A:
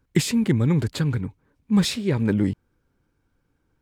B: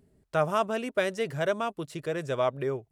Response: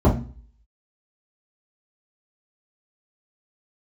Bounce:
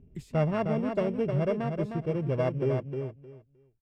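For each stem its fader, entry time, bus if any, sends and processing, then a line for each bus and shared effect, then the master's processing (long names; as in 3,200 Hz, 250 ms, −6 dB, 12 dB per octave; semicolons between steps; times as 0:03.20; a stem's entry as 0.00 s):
−13.0 dB, 0.00 s, no send, no echo send, first-order pre-emphasis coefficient 0.8; automatic ducking −13 dB, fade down 0.75 s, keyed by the second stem
−3.5 dB, 0.00 s, no send, echo send −6 dB, samples sorted by size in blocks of 16 samples; low-pass filter 5,500 Hz 12 dB per octave; high-shelf EQ 2,300 Hz −11 dB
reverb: not used
echo: repeating echo 309 ms, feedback 19%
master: spectral tilt −4 dB per octave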